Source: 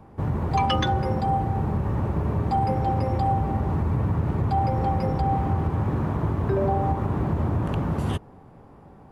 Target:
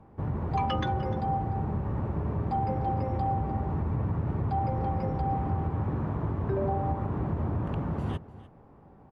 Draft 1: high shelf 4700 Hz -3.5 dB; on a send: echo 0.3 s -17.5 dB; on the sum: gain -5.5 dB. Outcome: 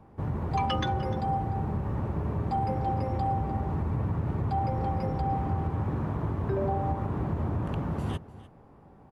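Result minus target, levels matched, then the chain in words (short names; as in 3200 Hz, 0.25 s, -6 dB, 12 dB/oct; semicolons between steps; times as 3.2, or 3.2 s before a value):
8000 Hz band +8.0 dB
high shelf 4700 Hz -15.5 dB; on a send: echo 0.3 s -17.5 dB; on the sum: gain -5.5 dB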